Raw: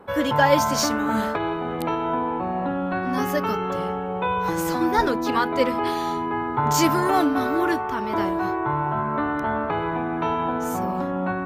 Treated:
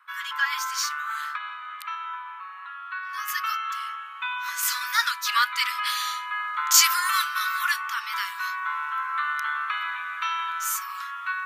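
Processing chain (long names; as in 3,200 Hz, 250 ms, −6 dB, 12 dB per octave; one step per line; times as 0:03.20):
high-shelf EQ 2,100 Hz −4.5 dB, from 0:03.28 +4 dB, from 0:04.63 +10 dB
Butterworth high-pass 1,100 Hz 72 dB per octave
level +1 dB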